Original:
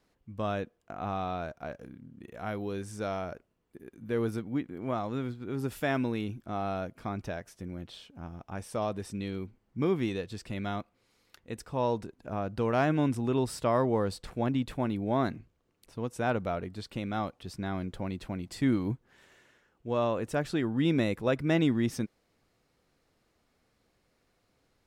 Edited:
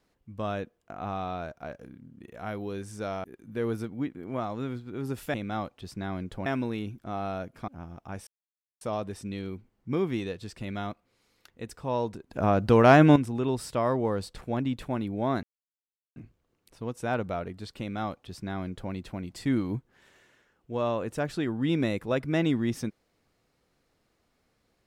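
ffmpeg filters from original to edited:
-filter_complex "[0:a]asplit=9[a][b][c][d][e][f][g][h][i];[a]atrim=end=3.242[j];[b]atrim=start=3.778:end=5.882[k];[c]atrim=start=16.958:end=18.082[l];[d]atrim=start=5.878:end=7.102[m];[e]atrim=start=8.108:end=8.7,asetpts=PTS-STARTPTS,afade=t=out:st=0.588:d=0.004:c=hsin,apad=pad_dur=0.54[n];[f]atrim=start=8.7:end=12.202,asetpts=PTS-STARTPTS,afade=t=in:d=0.004:c=hsin[o];[g]atrim=start=12.198:end=13.052,asetpts=PTS-STARTPTS,volume=10dB[p];[h]atrim=start=13.048:end=15.32,asetpts=PTS-STARTPTS,afade=t=out:st=2.268:d=0.004:c=hsin,apad=pad_dur=0.73[q];[i]atrim=start=15.32,asetpts=PTS-STARTPTS,afade=t=in:d=0.004:c=hsin[r];[j][k]acrossfade=d=0.004:c1=hsin:c2=hsin[s];[s][l]acrossfade=d=0.004:c1=hsin:c2=hsin[t];[t][m]acrossfade=d=0.004:c1=hsin:c2=hsin[u];[n][o]concat=n=2:v=0:a=1[v];[u][v]acrossfade=d=0.004:c1=hsin:c2=hsin[w];[w][p]acrossfade=d=0.004:c1=hsin:c2=hsin[x];[q][r]concat=n=2:v=0:a=1[y];[x][y]acrossfade=d=0.004:c1=hsin:c2=hsin"

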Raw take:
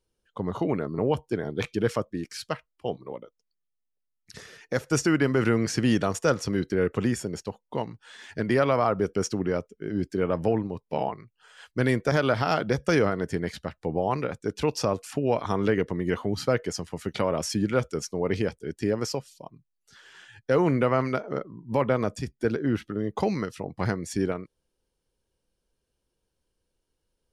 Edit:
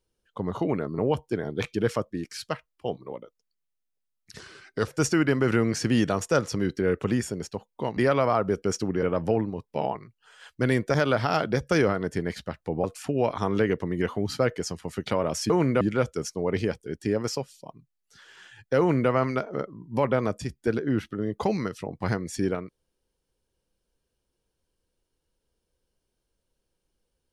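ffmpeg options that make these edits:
-filter_complex "[0:a]asplit=8[a][b][c][d][e][f][g][h];[a]atrim=end=4.394[i];[b]atrim=start=4.39:end=4.81,asetpts=PTS-STARTPTS,asetrate=37926,aresample=44100,atrim=end_sample=21537,asetpts=PTS-STARTPTS[j];[c]atrim=start=4.806:end=7.902[k];[d]atrim=start=8.478:end=9.542[l];[e]atrim=start=10.198:end=14.012[m];[f]atrim=start=14.918:end=17.582[n];[g]atrim=start=20.558:end=20.872[o];[h]atrim=start=17.578[p];[i][j]acrossfade=d=0.004:c1=hsin:c2=hsin[q];[q][k]acrossfade=d=0.004:c1=hsin:c2=hsin[r];[r][l]acrossfade=d=0.004:c1=hsin:c2=hsin[s];[s][m]acrossfade=d=0.004:c1=hsin:c2=hsin[t];[t][n]acrossfade=d=0.004:c1=hsin:c2=hsin[u];[u][o]acrossfade=d=0.004:c1=hsin:c2=hsin[v];[v][p]acrossfade=d=0.004:c1=hsin:c2=hsin"

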